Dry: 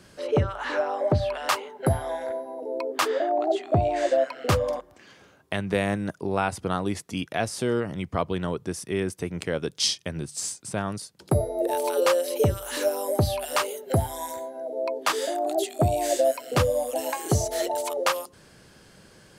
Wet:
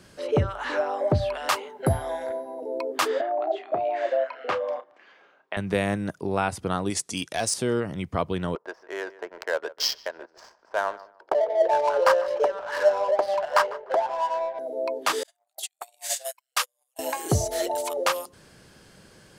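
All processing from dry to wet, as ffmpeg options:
-filter_complex "[0:a]asettb=1/sr,asplit=3[a][b][c];[a]atrim=end=3.214[d];[b]atrim=start=3.21:end=5.57,asetpts=PTS-STARTPTS,afade=t=in:d=0.004:c=qsin,afade=t=out:st=2.356:d=0.004:c=qsin,highpass=560,lowpass=2.5k,asplit=2[e][f];[f]adelay=32,volume=-12dB[g];[e][g]amix=inputs=2:normalize=0,atrim=end_sample=104076[h];[c]atrim=start=5.566[i];[d][h]acrossfade=d=0.004:c1=hsin:c2=qsin[j];[j][i]acrossfade=d=0.004:c1=qsin:c2=hsin,asettb=1/sr,asplit=3[k][l][m];[k]atrim=end=6.904[n];[l]atrim=start=6.9:end=7.54,asetpts=PTS-STARTPTS,afade=t=in:d=0.004:c=qsin,afade=t=out:st=0.636:d=0.004:c=qsin,lowpass=f=9.6k:w=0.5412,lowpass=f=9.6k:w=1.3066,bass=f=250:g=-5,treble=f=4k:g=14,asoftclip=type=hard:threshold=-18dB[o];[m]atrim=start=7.536[p];[n][o]acrossfade=d=0.004:c1=hsin:c2=qsin[q];[q][p]acrossfade=d=0.004:c1=qsin:c2=hsin,asettb=1/sr,asplit=3[r][s][t];[r]atrim=end=8.554[u];[s]atrim=start=8.55:end=14.59,asetpts=PTS-STARTPTS,afade=t=in:d=0.004:c=qsin,afade=t=out:st=6.036:d=0.004:c=qsin,highpass=f=470:w=0.5412,highpass=f=470:w=1.3066,equalizer=f=640:t=q:w=4:g=7,equalizer=f=970:t=q:w=4:g=9,equalizer=f=1.6k:t=q:w=4:g=8,equalizer=f=2.5k:t=q:w=4:g=-6,equalizer=f=3.7k:t=q:w=4:g=-9,equalizer=f=5.2k:t=q:w=4:g=5,lowpass=f=5.6k:w=0.5412,lowpass=f=5.6k:w=1.3066,adynamicsmooth=sensitivity=5.5:basefreq=1k,asplit=2[v][w];[w]adelay=149,lowpass=f=1.9k:p=1,volume=-17dB,asplit=2[x][y];[y]adelay=149,lowpass=f=1.9k:p=1,volume=0.25[z];[v][x][z]amix=inputs=3:normalize=0,atrim=end_sample=266364[aa];[t]atrim=start=14.586[ab];[u][aa]acrossfade=d=0.004:c1=hsin:c2=qsin[ac];[ac][ab]acrossfade=d=0.004:c1=qsin:c2=hsin,asettb=1/sr,asplit=3[ad][ae][af];[ad]atrim=end=15.234[ag];[ae]atrim=start=15.23:end=16.99,asetpts=PTS-STARTPTS,afade=t=in:d=0.004:c=qsin,afade=t=out:st=1.756:d=0.004:c=qsin,highpass=f=920:w=0.5412,highpass=f=920:w=1.3066,agate=range=-44dB:threshold=-33dB:ratio=16:release=100:detection=peak,highshelf=f=2.5k:g=8[ah];[af]atrim=start=16.986[ai];[ag][ah]acrossfade=d=0.004:c1=hsin:c2=qsin[aj];[aj][ai]acrossfade=d=0.004:c1=qsin:c2=hsin"

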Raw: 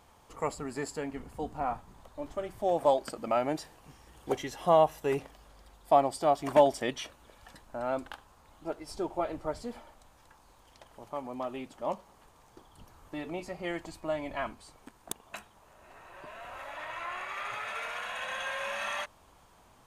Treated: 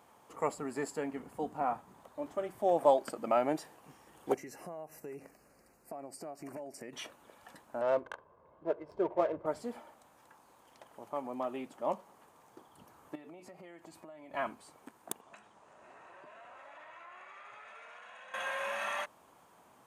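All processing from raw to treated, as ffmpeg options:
-filter_complex "[0:a]asettb=1/sr,asplit=3[a][b][c];[a]atrim=end=4.344[d];[b]atrim=start=4.34:end=6.93,asetpts=PTS-STARTPTS,afade=t=in:d=0.004:c=qsin,afade=t=out:st=2.586:d=0.004:c=qsin,equalizer=f=950:w=1.2:g=-9,acompressor=threshold=-40dB:ratio=10:attack=3.2:release=140:knee=1:detection=peak,asuperstop=centerf=3400:order=4:qfactor=1.9[e];[c]atrim=start=6.926[f];[d][e]acrossfade=d=0.004:c1=hsin:c2=qsin[g];[g][f]acrossfade=d=0.004:c1=qsin:c2=hsin,asettb=1/sr,asplit=3[h][i][j];[h]atrim=end=7.814[k];[i]atrim=start=7.81:end=9.46,asetpts=PTS-STARTPTS,afade=t=in:d=0.004:c=qsin,afade=t=out:st=1.646:d=0.004:c=qsin,equalizer=f=360:t=o:w=1.6:g=2.5,aecho=1:1:1.9:0.62,atrim=end_sample=72765,adynamicsmooth=sensitivity=6:basefreq=1k[l];[j]atrim=start=9.456[m];[k][l]acrossfade=d=0.004:c1=hsin:c2=qsin[n];[n][m]acrossfade=d=0.004:c1=qsin:c2=hsin,asettb=1/sr,asplit=3[o][p][q];[o]atrim=end=13.154[r];[p]atrim=start=13.15:end=14.34,asetpts=PTS-STARTPTS,afade=t=in:d=0.004:c=qsin,afade=t=out:st=1.186:d=0.004:c=qsin,highpass=63,acompressor=threshold=-46dB:ratio=20:attack=3.2:release=140:knee=1:detection=peak[s];[q]atrim=start=14.336[t];[r][s]acrossfade=d=0.004:c1=hsin:c2=qsin[u];[u][t]acrossfade=d=0.004:c1=qsin:c2=hsin,asettb=1/sr,asplit=3[v][w][x];[v]atrim=end=15.214[y];[w]atrim=start=15.21:end=18.34,asetpts=PTS-STARTPTS,afade=t=in:d=0.004:c=qsin,afade=t=out:st=3.126:d=0.004:c=qsin,lowpass=f=8.4k:w=0.5412,lowpass=f=8.4k:w=1.3066,acompressor=threshold=-50dB:ratio=4:attack=3.2:release=140:knee=1:detection=peak[z];[x]atrim=start=18.336[aa];[y][z]acrossfade=d=0.004:c1=hsin:c2=qsin[ab];[ab][aa]acrossfade=d=0.004:c1=qsin:c2=hsin,highpass=180,equalizer=f=4.4k:w=0.84:g=-6.5"

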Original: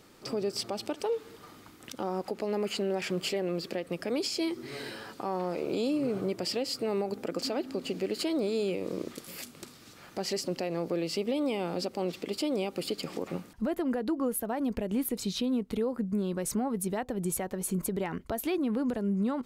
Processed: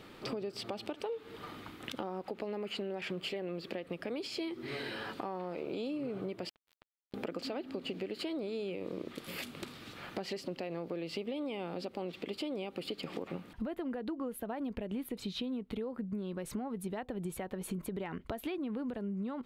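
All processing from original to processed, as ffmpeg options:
-filter_complex "[0:a]asettb=1/sr,asplit=3[a][b][c];[a]atrim=end=6.494[d];[b]atrim=start=6.49:end=7.14,asetpts=PTS-STARTPTS,afade=t=in:d=0.004:c=qsin,afade=t=out:st=0.646:d=0.004:c=qsin,acompressor=threshold=-32dB:ratio=20:attack=3.2:release=140:knee=1:detection=peak,acrusher=bits=3:mix=0:aa=0.5[e];[c]atrim=start=7.136[f];[d][e]acrossfade=d=0.004:c1=hsin:c2=qsin[g];[g][f]acrossfade=d=0.004:c1=qsin:c2=hsin,highshelf=f=4.5k:t=q:w=1.5:g=-8.5,acompressor=threshold=-41dB:ratio=5,volume=4.5dB"

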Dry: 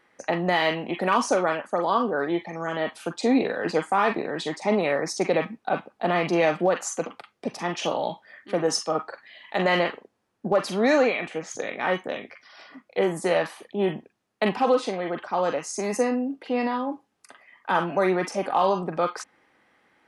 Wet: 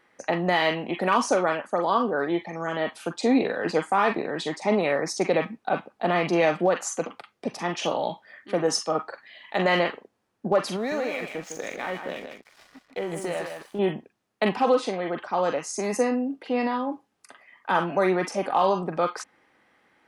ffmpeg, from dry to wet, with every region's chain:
-filter_complex "[0:a]asettb=1/sr,asplit=3[a][b][c];[a]atrim=end=10.764[d];[b]atrim=start=10.76:end=13.79,asetpts=PTS-STARTPTS,afade=t=in:d=0.004:c=qsin,afade=t=out:st=3.026:d=0.004:c=qsin,acompressor=threshold=-27dB:ratio=3:attack=3.2:release=140:knee=1:detection=peak,aeval=exprs='sgn(val(0))*max(abs(val(0))-0.00376,0)':c=same,aecho=1:1:156:0.447,atrim=end_sample=133623[e];[c]atrim=start=13.786[f];[d][e]acrossfade=d=0.004:c1=hsin:c2=qsin[g];[g][f]acrossfade=d=0.004:c1=qsin:c2=hsin"

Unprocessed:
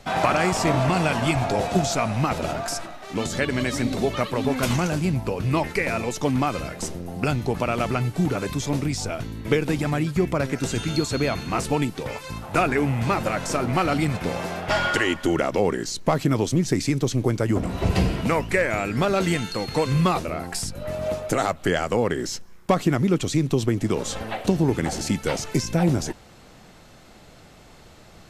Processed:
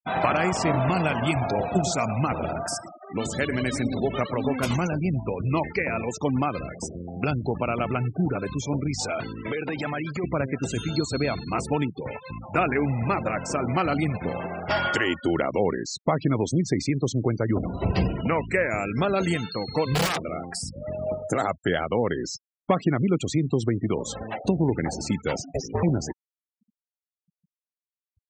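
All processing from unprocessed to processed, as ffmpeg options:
-filter_complex "[0:a]asettb=1/sr,asplit=3[a][b][c];[a]atrim=end=1.754[d];[b]atrim=start=1.75:end=4.48,asetpts=PTS-STARTPTS,afade=t=in:d=0.004:c=qsin,afade=t=out:st=2.726:d=0.004:c=qsin,equalizer=f=8.8k:t=o:w=0.44:g=4.5,aecho=1:1:110:0.251,atrim=end_sample=120393[e];[c]atrim=start=4.476[f];[d][e]acrossfade=d=0.004:c1=hsin:c2=qsin[g];[g][f]acrossfade=d=0.004:c1=qsin:c2=hsin,asettb=1/sr,asplit=3[h][i][j];[h]atrim=end=8.994[k];[i]atrim=start=8.99:end=10.24,asetpts=PTS-STARTPTS,afade=t=in:d=0.004:c=qsin,afade=t=out:st=1.246:d=0.004:c=qsin,acompressor=threshold=-25dB:ratio=16:attack=3.2:release=140:knee=1:detection=peak,asplit=2[l][m];[m]highpass=f=720:p=1,volume=17dB,asoftclip=type=tanh:threshold=-15.5dB[n];[l][n]amix=inputs=2:normalize=0,lowpass=f=6.2k:p=1,volume=-6dB[o];[j]atrim=start=10.236[p];[k][o]acrossfade=d=0.004:c1=hsin:c2=qsin[q];[q][p]acrossfade=d=0.004:c1=qsin:c2=hsin,asettb=1/sr,asplit=3[r][s][t];[r]atrim=end=19.944[u];[s]atrim=start=19.94:end=20.5,asetpts=PTS-STARTPTS,afade=t=in:d=0.004:c=qsin,afade=t=out:st=0.556:d=0.004:c=qsin,highpass=93,acrossover=split=6900[v][w];[w]acompressor=threshold=-52dB:ratio=4:attack=1:release=60[x];[v][x]amix=inputs=2:normalize=0,aeval=exprs='(mod(6.31*val(0)+1,2)-1)/6.31':c=same[y];[t]atrim=start=20.496[z];[u][y]acrossfade=d=0.004:c1=hsin:c2=qsin[aa];[aa][z]acrossfade=d=0.004:c1=qsin:c2=hsin,asettb=1/sr,asplit=3[ab][ac][ad];[ab]atrim=end=25.424[ae];[ac]atrim=start=25.42:end=25.83,asetpts=PTS-STARTPTS,afade=t=in:d=0.004:c=qsin,afade=t=out:st=0.406:d=0.004:c=qsin,bandreject=f=2k:w=26,aeval=exprs='val(0)*sin(2*PI*270*n/s)':c=same[af];[ad]atrim=start=25.826[ag];[ae][af]acrossfade=d=0.004:c1=hsin:c2=qsin[ah];[ah][ag]acrossfade=d=0.004:c1=qsin:c2=hsin,highpass=54,afftfilt=real='re*gte(hypot(re,im),0.0355)':imag='im*gte(hypot(re,im),0.0355)':win_size=1024:overlap=0.75,volume=-2dB"

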